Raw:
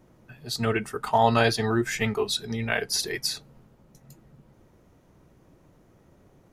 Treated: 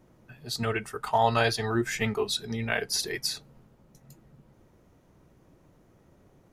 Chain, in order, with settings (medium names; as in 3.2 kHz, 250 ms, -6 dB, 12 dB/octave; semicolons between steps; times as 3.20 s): 0.63–1.75 s: peaking EQ 240 Hz -6 dB 1.3 oct; trim -2 dB